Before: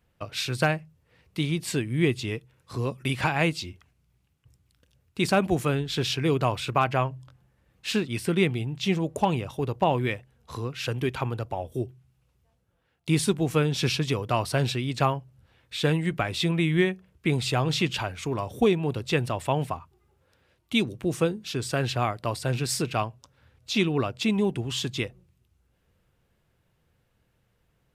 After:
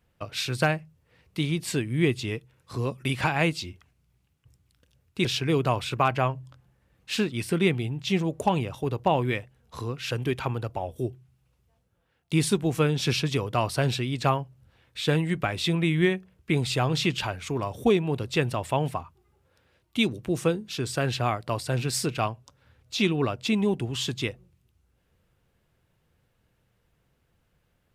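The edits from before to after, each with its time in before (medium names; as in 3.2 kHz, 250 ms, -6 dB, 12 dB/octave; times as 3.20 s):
5.25–6.01 s: delete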